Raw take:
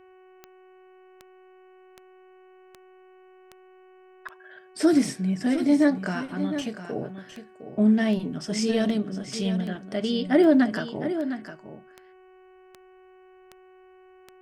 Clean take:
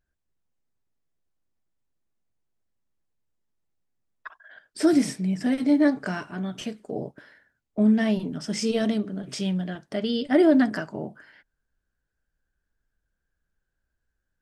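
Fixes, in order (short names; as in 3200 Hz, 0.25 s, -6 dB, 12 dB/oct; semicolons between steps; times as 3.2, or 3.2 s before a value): de-click; de-hum 372.1 Hz, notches 8; inverse comb 0.708 s -10.5 dB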